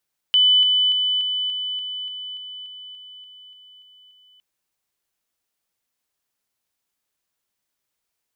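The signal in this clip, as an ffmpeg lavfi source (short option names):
-f lavfi -i "aevalsrc='pow(10,(-12-3*floor(t/0.29))/20)*sin(2*PI*3000*t)':d=4.06:s=44100"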